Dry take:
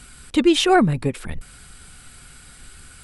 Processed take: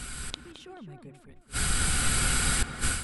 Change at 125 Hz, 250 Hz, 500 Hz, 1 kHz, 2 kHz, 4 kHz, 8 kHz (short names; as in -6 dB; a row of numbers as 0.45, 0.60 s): -5.5, -18.0, -21.0, -12.5, -2.5, -5.5, +7.5 dB